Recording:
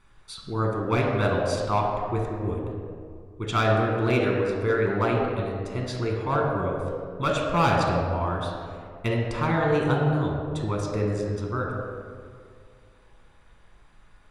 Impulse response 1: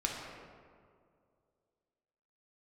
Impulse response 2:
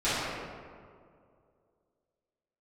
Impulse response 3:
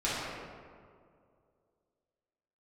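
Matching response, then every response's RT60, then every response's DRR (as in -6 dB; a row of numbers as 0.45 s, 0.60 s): 1; 2.2 s, 2.2 s, 2.2 s; -1.5 dB, -15.5 dB, -10.5 dB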